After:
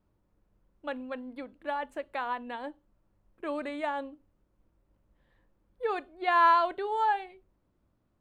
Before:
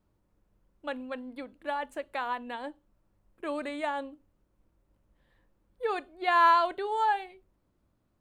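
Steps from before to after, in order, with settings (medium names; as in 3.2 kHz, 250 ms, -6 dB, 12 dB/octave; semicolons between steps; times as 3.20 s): treble shelf 5 kHz -9 dB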